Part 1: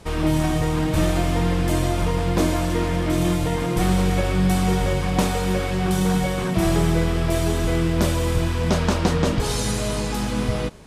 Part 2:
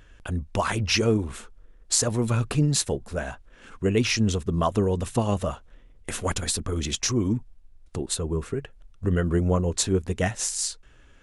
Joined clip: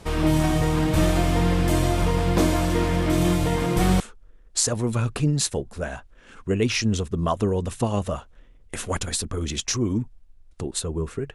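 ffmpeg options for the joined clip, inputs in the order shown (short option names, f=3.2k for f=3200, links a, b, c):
-filter_complex "[0:a]apad=whole_dur=11.34,atrim=end=11.34,atrim=end=4.002[a];[1:a]atrim=start=1.348:end=8.69[b];[a][b]acrossfade=d=0.004:c1=hsin:c2=hsin"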